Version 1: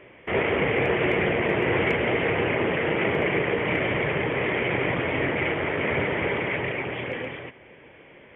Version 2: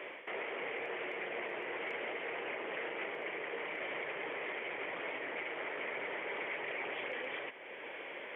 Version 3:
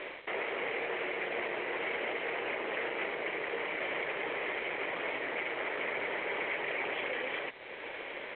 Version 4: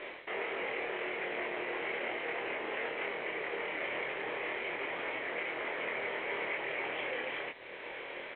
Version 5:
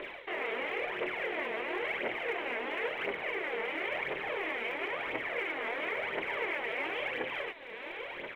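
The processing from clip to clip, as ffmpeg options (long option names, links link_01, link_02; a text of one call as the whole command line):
ffmpeg -i in.wav -af "areverse,acompressor=threshold=-32dB:ratio=6,areverse,alimiter=level_in=10.5dB:limit=-24dB:level=0:latency=1:release=433,volume=-10.5dB,highpass=480,volume=6dB" out.wav
ffmpeg -i in.wav -af "acontrast=89,aresample=8000,aeval=exprs='sgn(val(0))*max(abs(val(0))-0.00335,0)':channel_layout=same,aresample=44100,volume=-1.5dB" out.wav
ffmpeg -i in.wav -filter_complex "[0:a]asplit=2[link_01][link_02];[link_02]adelay=25,volume=-2.5dB[link_03];[link_01][link_03]amix=inputs=2:normalize=0,volume=-3.5dB" out.wav
ffmpeg -i in.wav -af "aphaser=in_gain=1:out_gain=1:delay=4.6:decay=0.59:speed=0.97:type=triangular" out.wav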